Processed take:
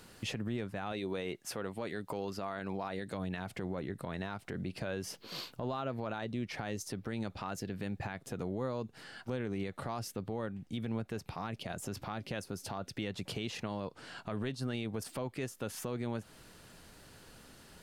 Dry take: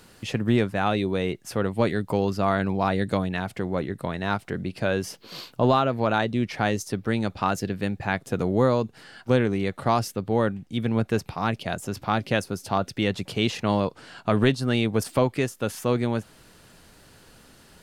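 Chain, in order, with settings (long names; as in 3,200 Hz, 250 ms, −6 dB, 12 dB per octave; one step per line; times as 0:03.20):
0:00.92–0:03.14: low-shelf EQ 190 Hz −11 dB
downward compressor 4 to 1, threshold −28 dBFS, peak gain reduction 11.5 dB
brickwall limiter −23.5 dBFS, peak gain reduction 9.5 dB
level −3.5 dB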